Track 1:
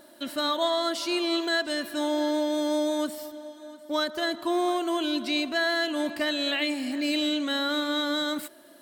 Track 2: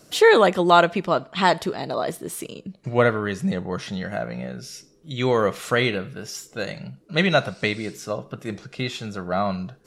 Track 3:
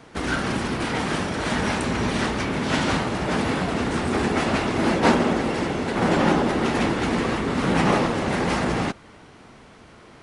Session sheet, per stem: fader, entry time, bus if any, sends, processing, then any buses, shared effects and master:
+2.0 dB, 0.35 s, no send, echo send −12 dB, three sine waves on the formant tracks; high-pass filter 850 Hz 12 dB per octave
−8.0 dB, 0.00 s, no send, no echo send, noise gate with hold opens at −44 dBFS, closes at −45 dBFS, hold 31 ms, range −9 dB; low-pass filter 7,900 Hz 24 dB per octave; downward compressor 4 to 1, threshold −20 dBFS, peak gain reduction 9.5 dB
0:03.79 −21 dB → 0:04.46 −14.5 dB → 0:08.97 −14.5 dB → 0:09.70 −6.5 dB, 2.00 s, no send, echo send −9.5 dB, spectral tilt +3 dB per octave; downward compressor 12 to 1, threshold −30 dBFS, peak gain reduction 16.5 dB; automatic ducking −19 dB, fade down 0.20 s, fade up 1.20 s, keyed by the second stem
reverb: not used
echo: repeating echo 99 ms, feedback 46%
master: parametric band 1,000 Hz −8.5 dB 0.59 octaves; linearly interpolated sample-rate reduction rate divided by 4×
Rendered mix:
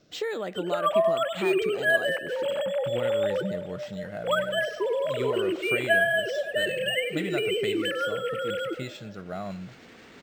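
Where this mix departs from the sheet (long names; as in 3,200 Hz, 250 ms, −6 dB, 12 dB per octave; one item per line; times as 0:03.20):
stem 1: missing high-pass filter 850 Hz 12 dB per octave
stem 2: missing noise gate with hold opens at −44 dBFS, closes at −45 dBFS, hold 31 ms, range −9 dB
stem 3: entry 2.00 s → 2.60 s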